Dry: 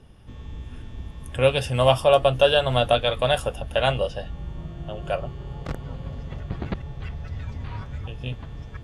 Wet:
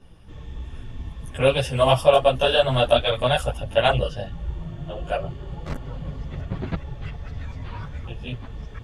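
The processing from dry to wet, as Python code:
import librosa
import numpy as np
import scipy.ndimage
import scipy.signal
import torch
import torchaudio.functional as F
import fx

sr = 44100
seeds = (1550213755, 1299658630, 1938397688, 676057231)

y = fx.chorus_voices(x, sr, voices=4, hz=0.97, base_ms=15, depth_ms=4.5, mix_pct=65)
y = y * librosa.db_to_amplitude(3.5)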